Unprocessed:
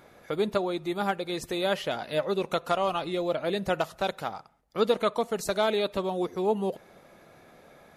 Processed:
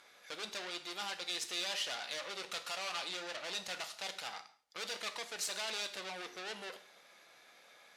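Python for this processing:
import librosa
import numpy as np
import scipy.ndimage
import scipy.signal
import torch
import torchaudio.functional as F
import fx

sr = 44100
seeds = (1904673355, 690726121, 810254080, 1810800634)

y = fx.tube_stage(x, sr, drive_db=36.0, bias=0.8)
y = fx.bandpass_q(y, sr, hz=4500.0, q=0.81)
y = fx.rev_gated(y, sr, seeds[0], gate_ms=190, shape='falling', drr_db=7.5)
y = F.gain(torch.from_numpy(y), 8.0).numpy()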